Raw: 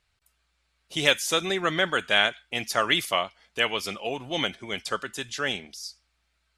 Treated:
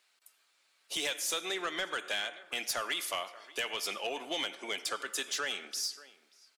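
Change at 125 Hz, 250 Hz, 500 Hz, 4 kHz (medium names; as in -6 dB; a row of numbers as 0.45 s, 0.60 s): -23.0 dB, -12.5 dB, -11.0 dB, -8.0 dB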